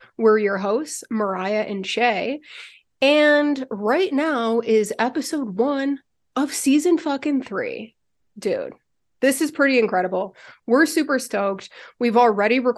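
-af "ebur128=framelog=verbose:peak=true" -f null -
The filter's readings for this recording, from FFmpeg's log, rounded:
Integrated loudness:
  I:         -20.6 LUFS
  Threshold: -31.2 LUFS
Loudness range:
  LRA:         3.2 LU
  Threshold: -41.4 LUFS
  LRA low:   -23.2 LUFS
  LRA high:  -20.0 LUFS
True peak:
  Peak:       -4.0 dBFS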